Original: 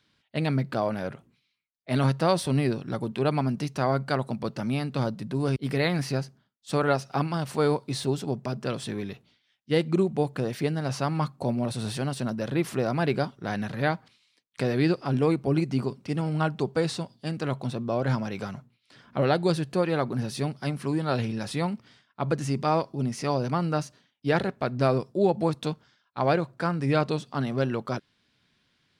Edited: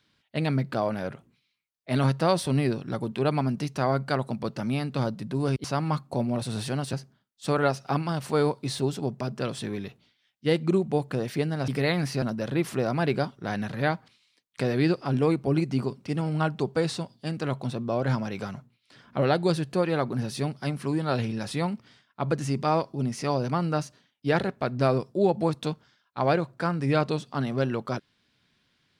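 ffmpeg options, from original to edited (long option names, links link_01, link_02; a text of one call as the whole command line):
ffmpeg -i in.wav -filter_complex "[0:a]asplit=5[link_01][link_02][link_03][link_04][link_05];[link_01]atrim=end=5.642[link_06];[link_02]atrim=start=10.928:end=12.222[link_07];[link_03]atrim=start=6.178:end=10.932[link_08];[link_04]atrim=start=5.638:end=6.182[link_09];[link_05]atrim=start=12.218[link_10];[link_06][link_07]acrossfade=duration=0.004:curve1=hsin:curve2=hsin[link_11];[link_11][link_08]acrossfade=duration=0.004:curve1=hsin:curve2=hsin[link_12];[link_12][link_09]acrossfade=duration=0.004:curve1=hsin:curve2=hsin[link_13];[link_13][link_10]acrossfade=duration=0.004:curve1=hsin:curve2=hsin" out.wav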